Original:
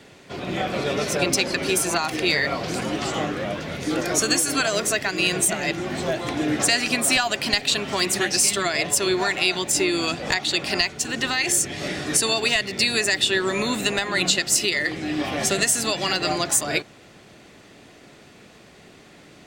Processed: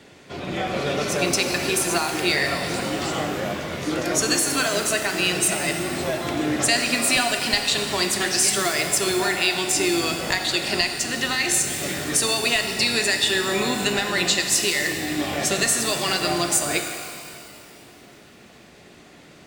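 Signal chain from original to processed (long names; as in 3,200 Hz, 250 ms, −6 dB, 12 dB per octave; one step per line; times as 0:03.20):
reverb with rising layers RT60 2.2 s, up +12 semitones, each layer −8 dB, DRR 5 dB
level −1 dB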